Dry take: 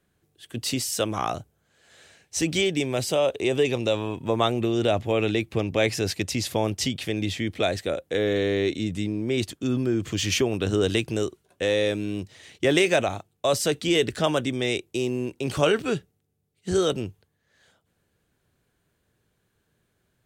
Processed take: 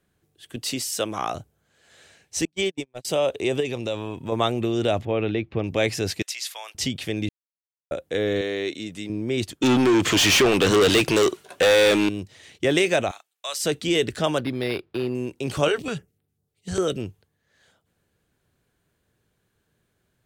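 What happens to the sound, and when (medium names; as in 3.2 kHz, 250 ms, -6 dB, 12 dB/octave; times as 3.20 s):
0.56–1.35 s: high-pass 210 Hz 6 dB/octave
2.45–3.05 s: gate -23 dBFS, range -45 dB
3.60–4.32 s: compression 1.5:1, threshold -30 dBFS
5.05–5.64 s: distance through air 280 m
6.22–6.75 s: Bessel high-pass 1.4 kHz, order 4
7.29–7.91 s: mute
8.41–9.10 s: high-pass 450 Hz 6 dB/octave
9.62–12.09 s: overdrive pedal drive 28 dB, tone 5.6 kHz, clips at -10 dBFS
13.11–13.63 s: high-pass 1.4 kHz
14.38–15.15 s: decimation joined by straight lines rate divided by 6×
15.68–17.00 s: step-sequenced notch 10 Hz 210–6300 Hz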